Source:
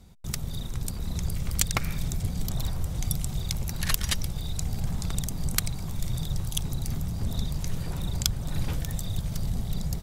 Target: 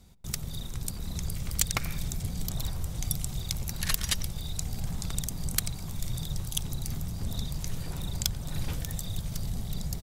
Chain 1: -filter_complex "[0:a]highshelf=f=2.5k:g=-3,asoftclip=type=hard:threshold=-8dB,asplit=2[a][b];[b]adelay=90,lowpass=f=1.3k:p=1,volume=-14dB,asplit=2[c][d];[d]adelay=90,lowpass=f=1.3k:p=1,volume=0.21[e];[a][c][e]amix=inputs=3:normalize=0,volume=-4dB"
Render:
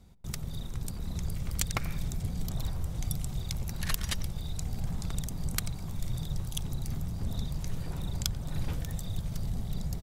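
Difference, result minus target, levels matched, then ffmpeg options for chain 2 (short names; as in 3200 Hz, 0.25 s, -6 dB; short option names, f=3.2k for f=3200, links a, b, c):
4000 Hz band -2.5 dB
-filter_complex "[0:a]highshelf=f=2.5k:g=5,asoftclip=type=hard:threshold=-8dB,asplit=2[a][b];[b]adelay=90,lowpass=f=1.3k:p=1,volume=-14dB,asplit=2[c][d];[d]adelay=90,lowpass=f=1.3k:p=1,volume=0.21[e];[a][c][e]amix=inputs=3:normalize=0,volume=-4dB"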